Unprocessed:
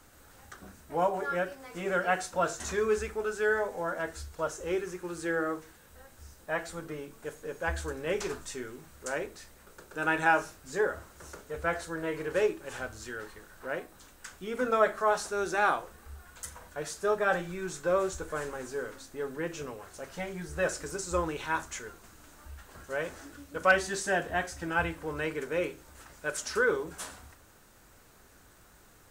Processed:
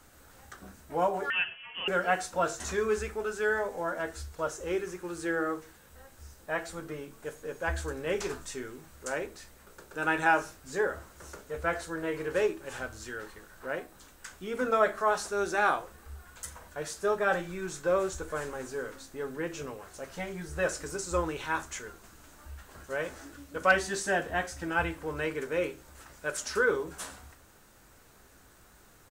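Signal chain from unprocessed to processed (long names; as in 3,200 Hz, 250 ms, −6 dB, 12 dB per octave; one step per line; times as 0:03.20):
double-tracking delay 15 ms −13.5 dB
0:01.30–0:01.88: voice inversion scrambler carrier 3,200 Hz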